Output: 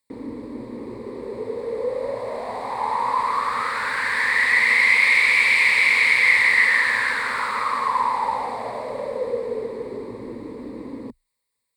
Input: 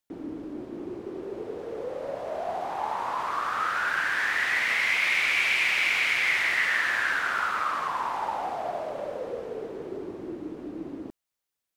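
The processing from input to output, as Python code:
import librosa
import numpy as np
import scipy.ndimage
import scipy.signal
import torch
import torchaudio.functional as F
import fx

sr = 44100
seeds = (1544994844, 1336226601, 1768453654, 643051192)

y = fx.ripple_eq(x, sr, per_octave=0.96, db=14)
y = y * 10.0 ** (3.5 / 20.0)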